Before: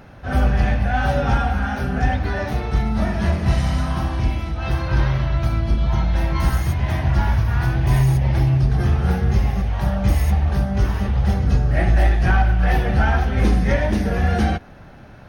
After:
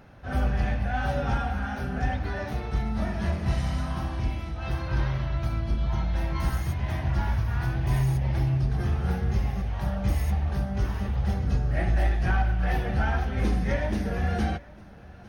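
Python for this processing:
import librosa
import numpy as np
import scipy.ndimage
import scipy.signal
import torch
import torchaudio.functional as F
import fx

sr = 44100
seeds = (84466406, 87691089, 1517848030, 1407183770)

y = x + 10.0 ** (-22.5 / 20.0) * np.pad(x, (int(854 * sr / 1000.0), 0))[:len(x)]
y = F.gain(torch.from_numpy(y), -8.0).numpy()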